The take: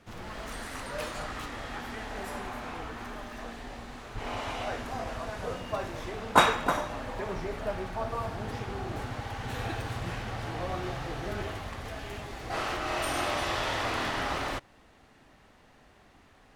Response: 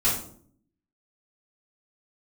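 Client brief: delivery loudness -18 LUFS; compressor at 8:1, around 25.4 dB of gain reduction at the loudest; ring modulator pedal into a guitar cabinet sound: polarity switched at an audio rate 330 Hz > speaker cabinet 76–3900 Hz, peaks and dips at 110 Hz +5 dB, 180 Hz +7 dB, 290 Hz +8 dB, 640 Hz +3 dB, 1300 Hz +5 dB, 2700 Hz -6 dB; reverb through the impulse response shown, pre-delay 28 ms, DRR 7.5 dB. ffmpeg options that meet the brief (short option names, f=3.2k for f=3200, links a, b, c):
-filter_complex "[0:a]acompressor=threshold=-43dB:ratio=8,asplit=2[a][b];[1:a]atrim=start_sample=2205,adelay=28[c];[b][c]afir=irnorm=-1:irlink=0,volume=-19.5dB[d];[a][d]amix=inputs=2:normalize=0,aeval=exprs='val(0)*sgn(sin(2*PI*330*n/s))':c=same,highpass=76,equalizer=f=110:t=q:w=4:g=5,equalizer=f=180:t=q:w=4:g=7,equalizer=f=290:t=q:w=4:g=8,equalizer=f=640:t=q:w=4:g=3,equalizer=f=1.3k:t=q:w=4:g=5,equalizer=f=2.7k:t=q:w=4:g=-6,lowpass=f=3.9k:w=0.5412,lowpass=f=3.9k:w=1.3066,volume=24dB"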